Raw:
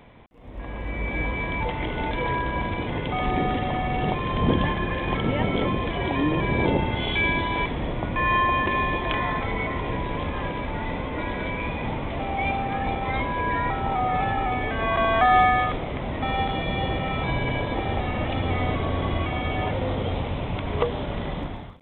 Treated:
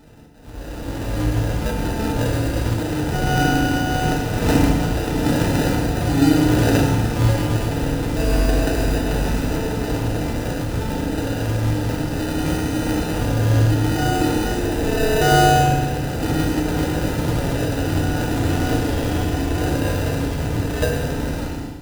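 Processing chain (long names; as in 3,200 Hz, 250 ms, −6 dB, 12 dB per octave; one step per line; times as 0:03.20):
sample-rate reduction 1,100 Hz, jitter 0%
feedback delay network reverb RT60 1.1 s, low-frequency decay 1.4×, high-frequency decay 0.9×, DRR −2 dB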